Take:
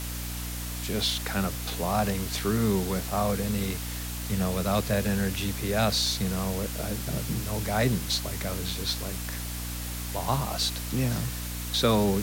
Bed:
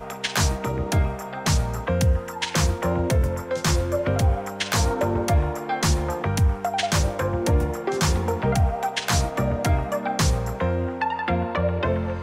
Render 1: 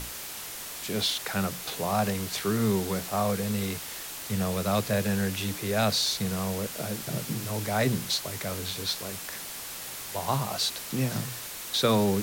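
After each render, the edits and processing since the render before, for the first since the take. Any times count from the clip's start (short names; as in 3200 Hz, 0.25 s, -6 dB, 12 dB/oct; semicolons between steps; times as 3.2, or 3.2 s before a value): notches 60/120/180/240/300 Hz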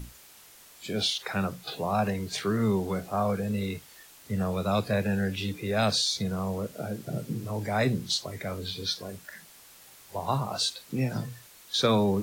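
noise print and reduce 14 dB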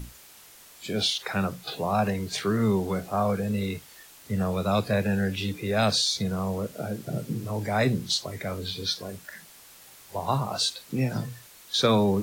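gain +2 dB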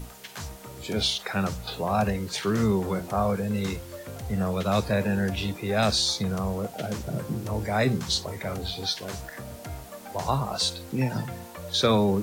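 add bed -16.5 dB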